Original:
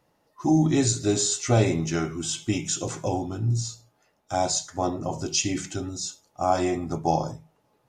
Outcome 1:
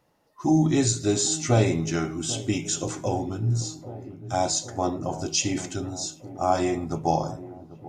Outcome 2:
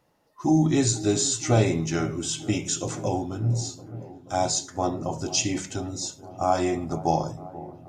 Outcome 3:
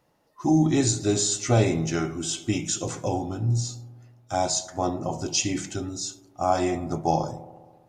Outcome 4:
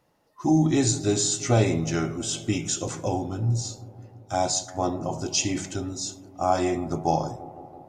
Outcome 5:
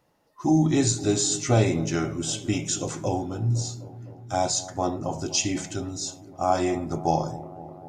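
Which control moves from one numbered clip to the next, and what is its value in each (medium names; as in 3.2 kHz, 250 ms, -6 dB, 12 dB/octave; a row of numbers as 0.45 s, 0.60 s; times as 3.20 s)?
feedback echo behind a low-pass, time: 790 ms, 481 ms, 67 ms, 166 ms, 255 ms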